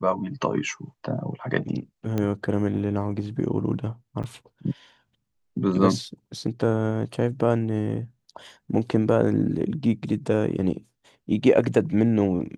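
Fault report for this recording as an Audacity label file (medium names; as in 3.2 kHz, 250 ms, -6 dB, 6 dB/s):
2.180000	2.180000	pop -14 dBFS
4.230000	4.240000	dropout 7.8 ms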